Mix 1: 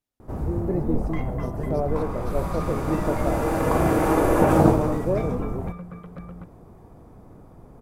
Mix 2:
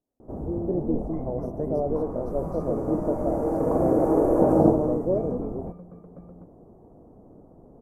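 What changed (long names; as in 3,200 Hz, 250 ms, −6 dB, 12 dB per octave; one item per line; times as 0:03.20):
first sound −8.0 dB
second sound −11.5 dB
master: add drawn EQ curve 110 Hz 0 dB, 260 Hz +8 dB, 640 Hz +8 dB, 3,300 Hz −25 dB, 6,100 Hz −8 dB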